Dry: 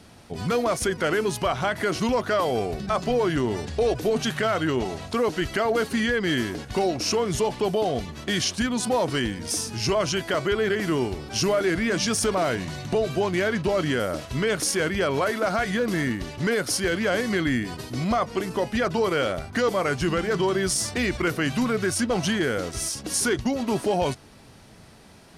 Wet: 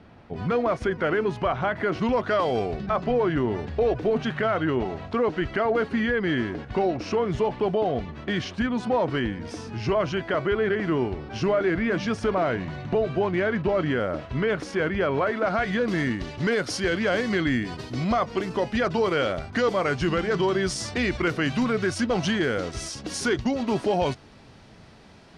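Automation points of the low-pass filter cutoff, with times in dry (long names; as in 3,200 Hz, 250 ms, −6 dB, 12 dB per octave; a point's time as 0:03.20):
0:01.91 2,200 Hz
0:02.56 4,700 Hz
0:02.93 2,300 Hz
0:15.29 2,300 Hz
0:16.00 5,100 Hz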